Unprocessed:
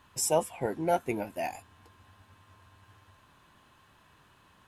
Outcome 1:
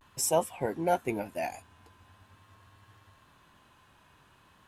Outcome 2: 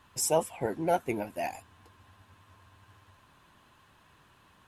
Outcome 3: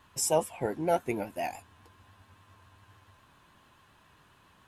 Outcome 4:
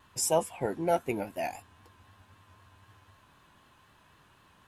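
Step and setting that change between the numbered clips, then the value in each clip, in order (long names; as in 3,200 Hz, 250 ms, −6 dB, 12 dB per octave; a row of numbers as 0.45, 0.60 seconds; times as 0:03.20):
pitch vibrato, speed: 0.44, 15, 7.2, 3.9 Hertz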